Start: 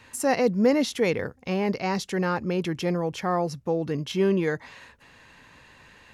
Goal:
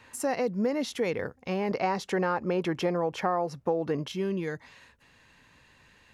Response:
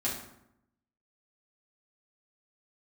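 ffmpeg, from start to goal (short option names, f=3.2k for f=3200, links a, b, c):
-af "asetnsamples=n=441:p=0,asendcmd='1.71 equalizer g 12;4.08 equalizer g -3.5',equalizer=f=810:w=0.4:g=4,acompressor=threshold=-19dB:ratio=5,volume=-5dB"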